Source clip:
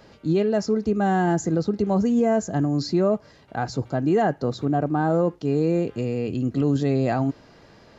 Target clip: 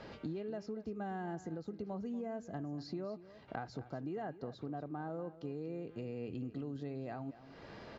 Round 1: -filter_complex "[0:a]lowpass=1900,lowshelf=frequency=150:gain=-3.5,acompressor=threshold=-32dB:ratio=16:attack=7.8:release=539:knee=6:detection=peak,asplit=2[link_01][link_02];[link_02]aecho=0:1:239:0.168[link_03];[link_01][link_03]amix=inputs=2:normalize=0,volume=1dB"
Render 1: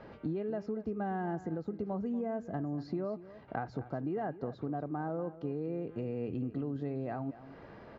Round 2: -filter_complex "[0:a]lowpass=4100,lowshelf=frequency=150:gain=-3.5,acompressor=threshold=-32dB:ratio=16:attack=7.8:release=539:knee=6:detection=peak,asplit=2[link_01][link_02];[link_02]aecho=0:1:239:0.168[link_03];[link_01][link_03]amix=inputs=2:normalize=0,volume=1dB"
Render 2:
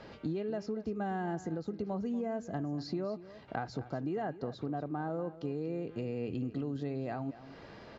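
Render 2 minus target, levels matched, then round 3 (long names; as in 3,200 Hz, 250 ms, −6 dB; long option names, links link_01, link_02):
downward compressor: peak gain reduction −5.5 dB
-filter_complex "[0:a]lowpass=4100,lowshelf=frequency=150:gain=-3.5,acompressor=threshold=-38dB:ratio=16:attack=7.8:release=539:knee=6:detection=peak,asplit=2[link_01][link_02];[link_02]aecho=0:1:239:0.168[link_03];[link_01][link_03]amix=inputs=2:normalize=0,volume=1dB"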